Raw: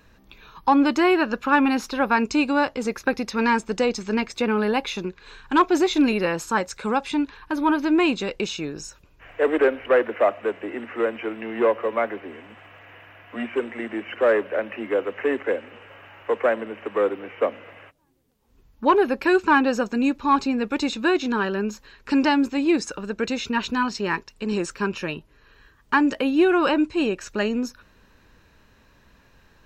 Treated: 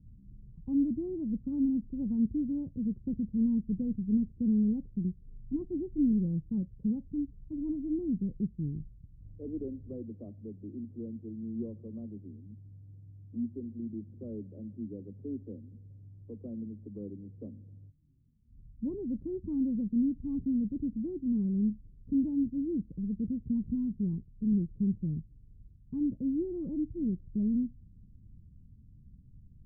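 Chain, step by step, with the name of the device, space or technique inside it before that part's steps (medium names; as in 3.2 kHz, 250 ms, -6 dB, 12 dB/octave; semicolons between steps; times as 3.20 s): the neighbour's flat through the wall (low-pass 200 Hz 24 dB/octave; peaking EQ 110 Hz +5 dB 0.95 oct); trim +3 dB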